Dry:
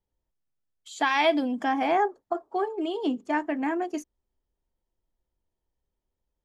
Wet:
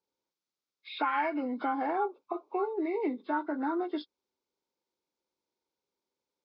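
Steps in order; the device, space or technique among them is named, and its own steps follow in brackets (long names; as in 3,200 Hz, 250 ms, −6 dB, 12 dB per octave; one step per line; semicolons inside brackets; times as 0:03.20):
hearing aid with frequency lowering (hearing-aid frequency compression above 1,000 Hz 1.5 to 1; downward compressor 3 to 1, threshold −28 dBFS, peak gain reduction 8.5 dB; loudspeaker in its box 340–5,700 Hz, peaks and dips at 680 Hz −9 dB, 1,800 Hz −8 dB, 2,900 Hz −6 dB)
0:01.94–0:02.58: parametric band 2,400 Hz +7.5 dB 0.22 octaves
level +3.5 dB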